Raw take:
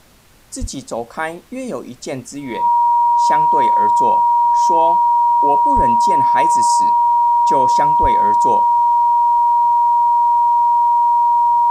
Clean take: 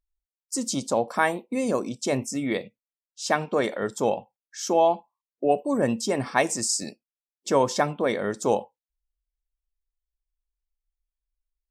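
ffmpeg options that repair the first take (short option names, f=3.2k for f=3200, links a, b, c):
-filter_complex "[0:a]bandreject=f=950:w=30,asplit=3[a][b][c];[a]afade=t=out:st=0.6:d=0.02[d];[b]highpass=f=140:w=0.5412,highpass=f=140:w=1.3066,afade=t=in:st=0.6:d=0.02,afade=t=out:st=0.72:d=0.02[e];[c]afade=t=in:st=0.72:d=0.02[f];[d][e][f]amix=inputs=3:normalize=0,asplit=3[g][h][i];[g]afade=t=out:st=5.75:d=0.02[j];[h]highpass=f=140:w=0.5412,highpass=f=140:w=1.3066,afade=t=in:st=5.75:d=0.02,afade=t=out:st=5.87:d=0.02[k];[i]afade=t=in:st=5.87:d=0.02[l];[j][k][l]amix=inputs=3:normalize=0,asplit=3[m][n][o];[m]afade=t=out:st=8.01:d=0.02[p];[n]highpass=f=140:w=0.5412,highpass=f=140:w=1.3066,afade=t=in:st=8.01:d=0.02,afade=t=out:st=8.13:d=0.02[q];[o]afade=t=in:st=8.13:d=0.02[r];[p][q][r]amix=inputs=3:normalize=0,agate=range=-21dB:threshold=-24dB"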